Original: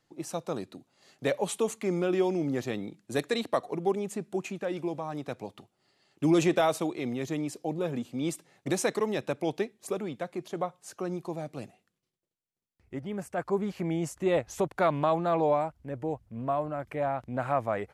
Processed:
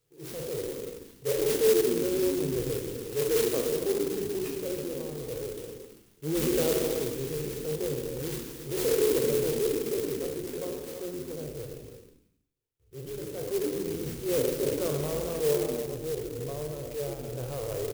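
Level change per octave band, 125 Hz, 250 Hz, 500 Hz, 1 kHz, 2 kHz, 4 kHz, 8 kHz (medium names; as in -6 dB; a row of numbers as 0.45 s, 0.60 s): -0.5 dB, -2.5 dB, +2.5 dB, -12.5 dB, -4.0 dB, +3.5 dB, +5.5 dB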